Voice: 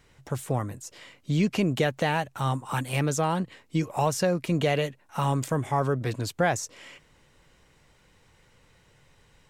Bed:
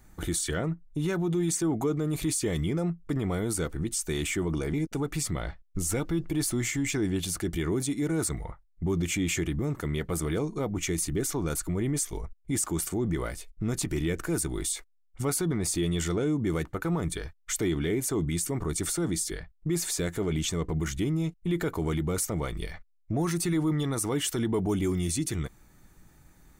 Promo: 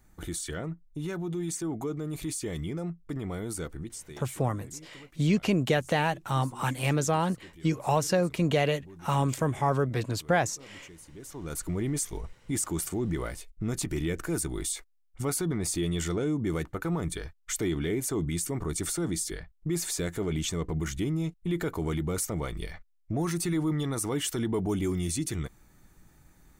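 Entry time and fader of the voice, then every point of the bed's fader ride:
3.90 s, -0.5 dB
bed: 3.75 s -5.5 dB
4.35 s -21 dB
11.07 s -21 dB
11.64 s -1.5 dB

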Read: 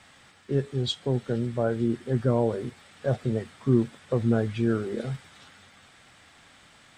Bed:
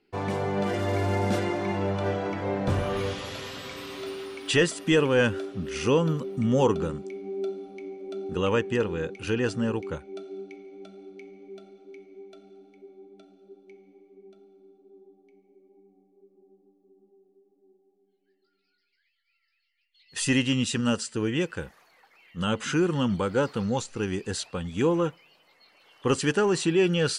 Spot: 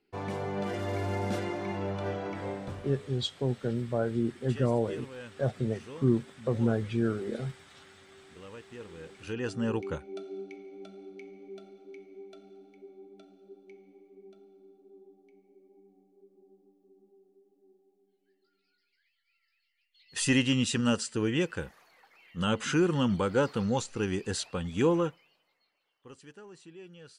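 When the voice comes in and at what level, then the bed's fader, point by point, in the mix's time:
2.35 s, -3.5 dB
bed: 2.46 s -6 dB
2.99 s -22.5 dB
8.62 s -22.5 dB
9.75 s -1.5 dB
24.95 s -1.5 dB
26.11 s -26.5 dB

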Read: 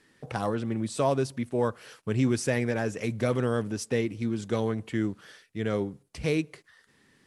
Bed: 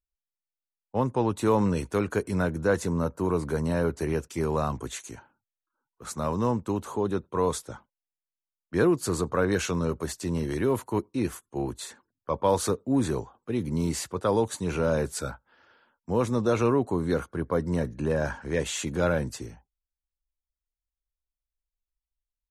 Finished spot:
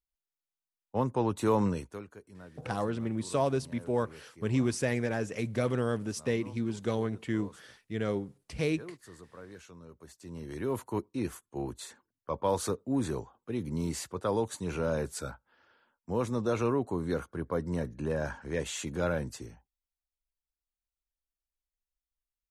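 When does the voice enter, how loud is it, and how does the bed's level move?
2.35 s, -3.0 dB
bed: 1.67 s -3.5 dB
2.16 s -23.5 dB
9.88 s -23.5 dB
10.78 s -5.5 dB

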